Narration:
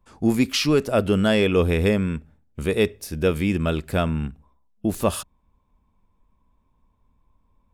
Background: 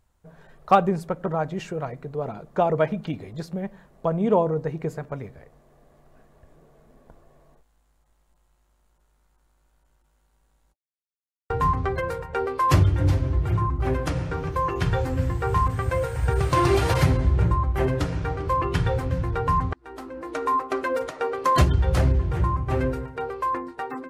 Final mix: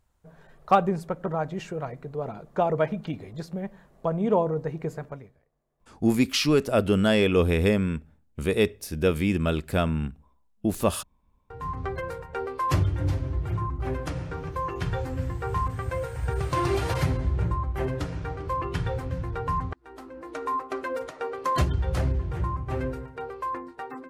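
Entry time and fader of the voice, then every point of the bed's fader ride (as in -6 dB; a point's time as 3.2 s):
5.80 s, -2.0 dB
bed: 5.07 s -2.5 dB
5.45 s -22 dB
11.36 s -22 dB
11.85 s -5.5 dB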